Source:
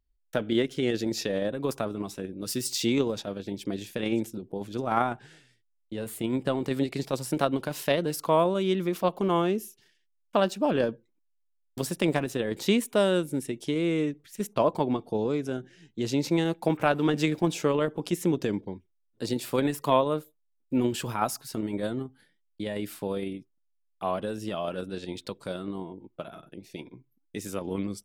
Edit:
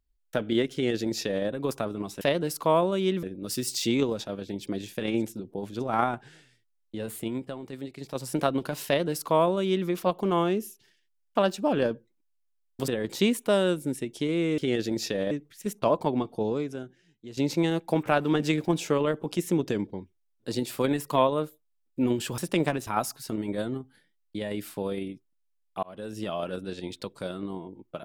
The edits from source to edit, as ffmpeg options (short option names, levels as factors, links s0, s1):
-filter_complex "[0:a]asplit=12[s0][s1][s2][s3][s4][s5][s6][s7][s8][s9][s10][s11];[s0]atrim=end=2.212[s12];[s1]atrim=start=7.838:end=8.862[s13];[s2]atrim=start=2.208:end=6.5,asetpts=PTS-STARTPTS,afade=t=out:st=3.922:d=0.37:silence=0.298538[s14];[s3]atrim=start=6.5:end=6.96,asetpts=PTS-STARTPTS,volume=0.299[s15];[s4]atrim=start=6.96:end=11.862,asetpts=PTS-STARTPTS,afade=t=in:d=0.37:silence=0.298538[s16];[s5]atrim=start=12.348:end=14.052[s17];[s6]atrim=start=0.728:end=1.462[s18];[s7]atrim=start=14.048:end=16.11,asetpts=PTS-STARTPTS,afade=t=out:st=1.172:d=0.89:c=qua:silence=0.223872[s19];[s8]atrim=start=16.11:end=21.122,asetpts=PTS-STARTPTS,afade=t=in:d=0.004:c=hsin:silence=0.223872[s20];[s9]atrim=start=11.858:end=12.352[s21];[s10]atrim=start=21.118:end=24.08,asetpts=PTS-STARTPTS,afade=t=out:st=2.958:d=0.004:c=hsin[s22];[s11]atrim=start=24.08,asetpts=PTS-STARTPTS,afade=t=in:d=0.37[s23];[s12][s13]acrossfade=d=0.004:c1=hsin:c2=hsin[s24];[s14][s15][s16]concat=n=3:v=0:a=1[s25];[s24][s25]acrossfade=d=0.004:c1=hsin:c2=hsin[s26];[s26][s17]acrossfade=d=0.004:c1=hsin:c2=hsin[s27];[s27][s18]acrossfade=d=0.004:c1=hsin:c2=hsin[s28];[s19][s20]concat=n=2:v=0:a=1[s29];[s28][s29]acrossfade=d=0.004:c1=hsin:c2=hsin[s30];[s30][s21]acrossfade=d=0.004:c1=hsin:c2=hsin[s31];[s22][s23]concat=n=2:v=0:a=1[s32];[s31][s32]acrossfade=d=0.004:c1=hsin:c2=hsin"